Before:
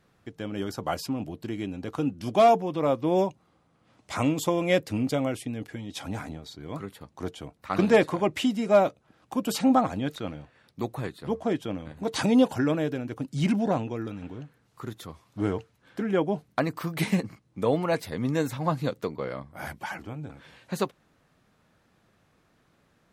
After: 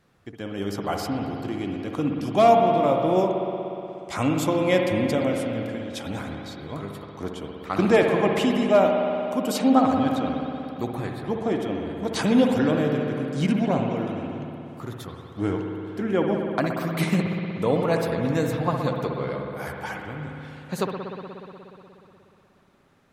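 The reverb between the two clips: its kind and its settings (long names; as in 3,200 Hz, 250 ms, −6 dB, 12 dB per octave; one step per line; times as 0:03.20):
spring reverb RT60 3.1 s, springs 60 ms, chirp 65 ms, DRR 1.5 dB
level +1 dB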